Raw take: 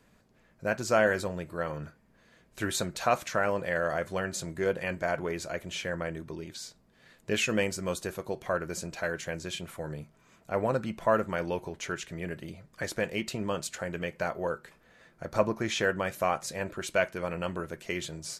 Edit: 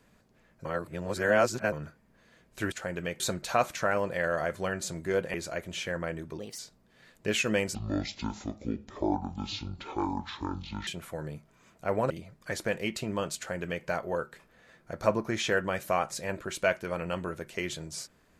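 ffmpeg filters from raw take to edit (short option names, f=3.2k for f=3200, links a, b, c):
-filter_complex "[0:a]asplit=11[a][b][c][d][e][f][g][h][i][j][k];[a]atrim=end=0.652[l];[b]atrim=start=0.648:end=1.722,asetpts=PTS-STARTPTS,areverse[m];[c]atrim=start=1.718:end=2.722[n];[d]atrim=start=13.688:end=14.172[o];[e]atrim=start=2.718:end=4.862[p];[f]atrim=start=5.318:end=6.374[q];[g]atrim=start=6.37:end=6.62,asetpts=PTS-STARTPTS,asetrate=56007,aresample=44100,atrim=end_sample=8681,asetpts=PTS-STARTPTS[r];[h]atrim=start=6.616:end=7.784[s];[i]atrim=start=7.78:end=9.53,asetpts=PTS-STARTPTS,asetrate=24696,aresample=44100,atrim=end_sample=137812,asetpts=PTS-STARTPTS[t];[j]atrim=start=9.526:end=10.762[u];[k]atrim=start=12.418[v];[l][m]acrossfade=d=0.004:c1=hsin:c2=hsin[w];[w][n]acrossfade=d=0.004:c1=hsin:c2=hsin[x];[x][o]acrossfade=d=0.004:c1=hsin:c2=hsin[y];[y][p]acrossfade=d=0.004:c1=hsin:c2=hsin[z];[z][q]acrossfade=d=0.004:c1=hsin:c2=hsin[aa];[aa][r]acrossfade=d=0.004:c1=hsin:c2=hsin[ab];[ab][s]acrossfade=d=0.004:c1=hsin:c2=hsin[ac];[ac][t]acrossfade=d=0.004:c1=hsin:c2=hsin[ad];[ad][u]acrossfade=d=0.004:c1=hsin:c2=hsin[ae];[ae][v]acrossfade=d=0.004:c1=hsin:c2=hsin"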